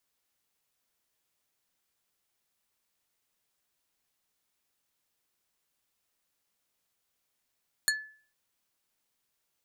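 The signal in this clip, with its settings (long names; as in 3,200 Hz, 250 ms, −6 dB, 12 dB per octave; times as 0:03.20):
struck wood plate, lowest mode 1,730 Hz, decay 0.46 s, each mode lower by 0 dB, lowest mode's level −23.5 dB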